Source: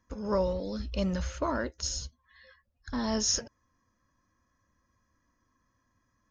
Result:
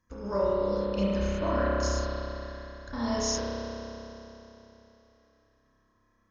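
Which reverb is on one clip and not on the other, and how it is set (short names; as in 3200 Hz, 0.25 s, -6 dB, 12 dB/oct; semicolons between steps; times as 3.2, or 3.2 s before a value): spring tank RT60 3.4 s, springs 30 ms, chirp 35 ms, DRR -7.5 dB; gain -4 dB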